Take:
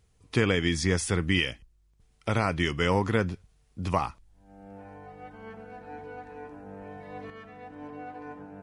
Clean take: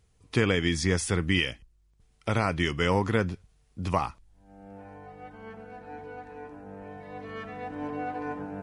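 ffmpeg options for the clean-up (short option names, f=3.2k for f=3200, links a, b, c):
-af "asetnsamples=n=441:p=0,asendcmd='7.3 volume volume 7.5dB',volume=0dB"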